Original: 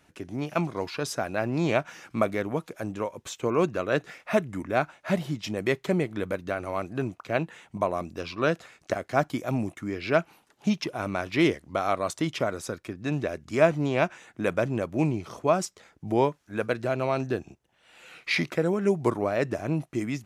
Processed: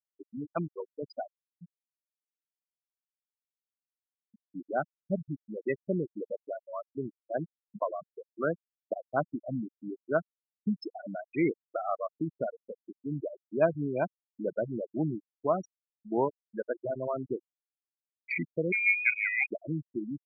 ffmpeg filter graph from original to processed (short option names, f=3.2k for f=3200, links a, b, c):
-filter_complex "[0:a]asettb=1/sr,asplit=3[a][b][c];[a]atrim=end=1.334[d];[b]atrim=start=1.33:end=4.45,asetpts=PTS-STARTPTS,afade=t=in:d=0.004:c=qsin,afade=t=out:st=3.116:d=0.004:c=qsin,lowshelf=f=140:g=-4.5,acrossover=split=180|3000[e][f][g];[f]acompressor=threshold=-46dB:ratio=2.5:attack=3.2:release=140:knee=2.83:detection=peak[h];[e][h][g]amix=inputs=3:normalize=0,acrusher=bits=5:dc=4:mix=0:aa=0.000001[i];[c]atrim=start=4.446[j];[d][i]acrossfade=d=0.004:c1=hsin:c2=qsin[k];[k][j]acrossfade=d=0.004:c1=qsin:c2=hsin,asettb=1/sr,asplit=3[l][m][n];[l]atrim=end=18.724[o];[m]atrim=start=18.72:end=19.46,asetpts=PTS-STARTPTS,afade=t=in:d=0.004:c=qsin,afade=t=out:st=0.736:d=0.004:c=qsin,equalizer=f=76:w=0.5:g=9,lowpass=f=2.2k:t=q:w=0.5098,lowpass=f=2.2k:t=q:w=0.6013,lowpass=f=2.2k:t=q:w=0.9,lowpass=f=2.2k:t=q:w=2.563,afreqshift=-2600[p];[n]atrim=start=19.456[q];[o][p]acrossfade=d=0.004:c1=hsin:c2=qsin[r];[r][q]acrossfade=d=0.004:c1=qsin:c2=hsin,highpass=130,afftfilt=real='re*gte(hypot(re,im),0.158)':imag='im*gte(hypot(re,im),0.158)':win_size=1024:overlap=0.75,volume=-4.5dB"